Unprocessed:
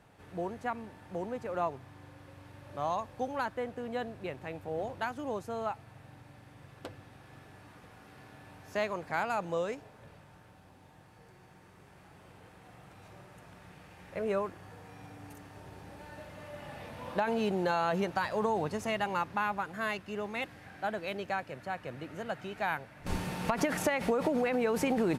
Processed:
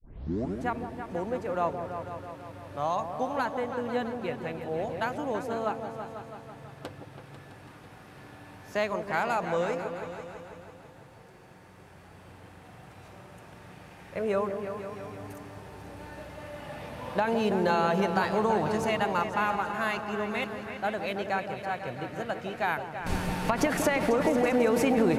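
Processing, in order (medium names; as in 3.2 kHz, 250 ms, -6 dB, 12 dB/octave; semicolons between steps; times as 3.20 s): tape start-up on the opening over 0.63 s; delay with an opening low-pass 165 ms, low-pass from 750 Hz, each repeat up 2 oct, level -6 dB; trim +3.5 dB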